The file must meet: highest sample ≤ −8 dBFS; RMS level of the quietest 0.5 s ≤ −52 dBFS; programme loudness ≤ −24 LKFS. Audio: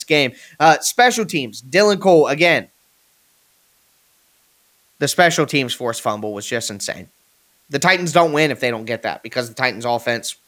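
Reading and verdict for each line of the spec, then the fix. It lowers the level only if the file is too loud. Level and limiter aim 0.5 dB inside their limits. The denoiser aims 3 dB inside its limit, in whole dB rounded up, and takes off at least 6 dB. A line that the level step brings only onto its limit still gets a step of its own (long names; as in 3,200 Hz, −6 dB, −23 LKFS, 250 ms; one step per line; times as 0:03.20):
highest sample −1.5 dBFS: out of spec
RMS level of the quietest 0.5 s −59 dBFS: in spec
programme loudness −17.5 LKFS: out of spec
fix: level −7 dB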